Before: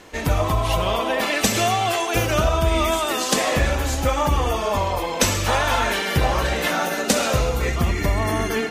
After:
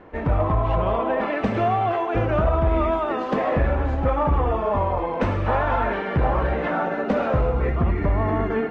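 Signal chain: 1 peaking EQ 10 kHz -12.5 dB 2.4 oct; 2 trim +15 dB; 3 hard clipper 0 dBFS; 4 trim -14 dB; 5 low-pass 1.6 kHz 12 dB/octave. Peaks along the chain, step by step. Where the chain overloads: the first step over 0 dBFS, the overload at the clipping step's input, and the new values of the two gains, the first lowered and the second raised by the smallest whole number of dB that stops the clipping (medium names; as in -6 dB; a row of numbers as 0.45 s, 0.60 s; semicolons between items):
-7.5 dBFS, +7.5 dBFS, 0.0 dBFS, -14.0 dBFS, -13.5 dBFS; step 2, 7.5 dB; step 2 +7 dB, step 4 -6 dB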